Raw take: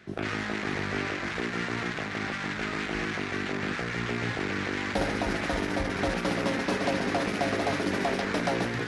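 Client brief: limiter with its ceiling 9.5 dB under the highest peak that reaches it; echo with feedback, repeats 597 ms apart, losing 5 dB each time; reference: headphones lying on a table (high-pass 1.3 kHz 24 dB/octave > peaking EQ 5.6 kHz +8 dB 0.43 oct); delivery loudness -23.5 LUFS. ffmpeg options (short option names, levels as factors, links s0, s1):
-af "alimiter=level_in=1.33:limit=0.0631:level=0:latency=1,volume=0.75,highpass=f=1300:w=0.5412,highpass=f=1300:w=1.3066,equalizer=f=5600:t=o:w=0.43:g=8,aecho=1:1:597|1194|1791|2388|2985|3582|4179:0.562|0.315|0.176|0.0988|0.0553|0.031|0.0173,volume=4.47"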